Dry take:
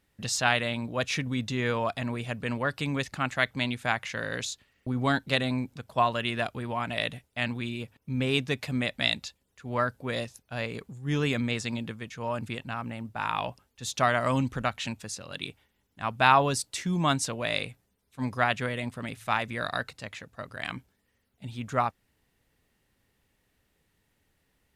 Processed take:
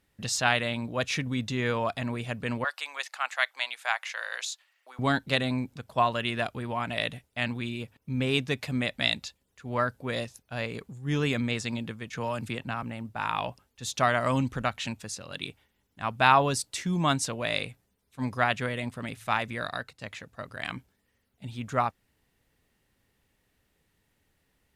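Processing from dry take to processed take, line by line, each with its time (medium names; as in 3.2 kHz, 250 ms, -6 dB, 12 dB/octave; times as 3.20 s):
2.64–4.99 s: high-pass 720 Hz 24 dB/octave
12.13–12.83 s: three bands compressed up and down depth 70%
19.49–20.01 s: fade out, to -8.5 dB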